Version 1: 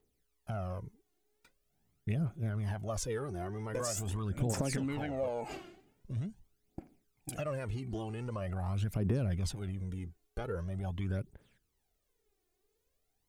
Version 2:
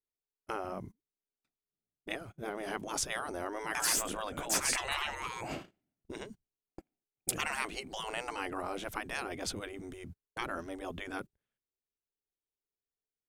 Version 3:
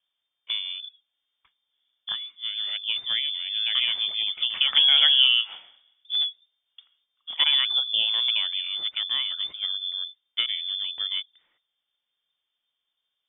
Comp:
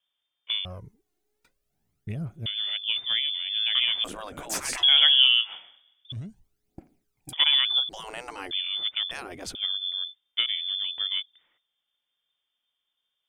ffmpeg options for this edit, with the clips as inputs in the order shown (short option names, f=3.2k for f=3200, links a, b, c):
-filter_complex "[0:a]asplit=2[a][b];[1:a]asplit=3[c][d][e];[2:a]asplit=6[f][g][h][i][j][k];[f]atrim=end=0.652[l];[a]atrim=start=0.648:end=2.462[m];[g]atrim=start=2.458:end=4.042[n];[c]atrim=start=4.038:end=4.832[o];[h]atrim=start=4.828:end=6.122[p];[b]atrim=start=6.118:end=7.332[q];[i]atrim=start=7.328:end=7.892[r];[d]atrim=start=7.888:end=8.512[s];[j]atrim=start=8.508:end=9.112[t];[e]atrim=start=9.108:end=9.552[u];[k]atrim=start=9.548[v];[l][m]acrossfade=d=0.004:c1=hsin:c2=hsin[w];[w][n]acrossfade=d=0.004:c1=hsin:c2=hsin[x];[x][o]acrossfade=d=0.004:c1=hsin:c2=hsin[y];[y][p]acrossfade=d=0.004:c1=hsin:c2=hsin[z];[z][q]acrossfade=d=0.004:c1=hsin:c2=hsin[aa];[aa][r]acrossfade=d=0.004:c1=hsin:c2=hsin[ab];[ab][s]acrossfade=d=0.004:c1=hsin:c2=hsin[ac];[ac][t]acrossfade=d=0.004:c1=hsin:c2=hsin[ad];[ad][u]acrossfade=d=0.004:c1=hsin:c2=hsin[ae];[ae][v]acrossfade=d=0.004:c1=hsin:c2=hsin"